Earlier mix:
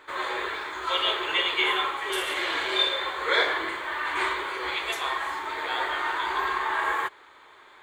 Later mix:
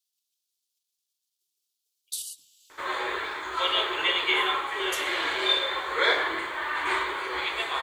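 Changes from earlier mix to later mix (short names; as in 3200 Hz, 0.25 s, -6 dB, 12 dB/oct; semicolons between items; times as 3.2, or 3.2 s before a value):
speech +6.5 dB; background: entry +2.70 s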